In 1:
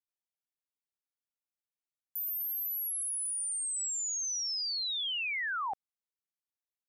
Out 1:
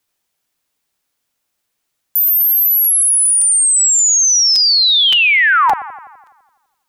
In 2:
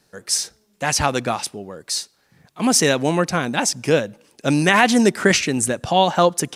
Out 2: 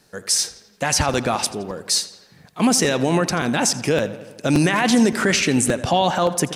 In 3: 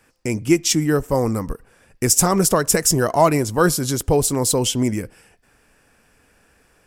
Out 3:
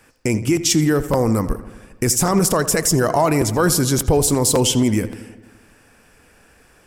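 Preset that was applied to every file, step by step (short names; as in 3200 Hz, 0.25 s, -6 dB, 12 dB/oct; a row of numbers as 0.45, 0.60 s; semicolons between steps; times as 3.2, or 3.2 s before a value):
limiter -12.5 dBFS; darkening echo 84 ms, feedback 65%, low-pass 4700 Hz, level -15 dB; crackling interface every 0.57 s, samples 256, repeat, from 0.56; normalise peaks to -6 dBFS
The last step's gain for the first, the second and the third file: +22.5, +4.5, +5.0 dB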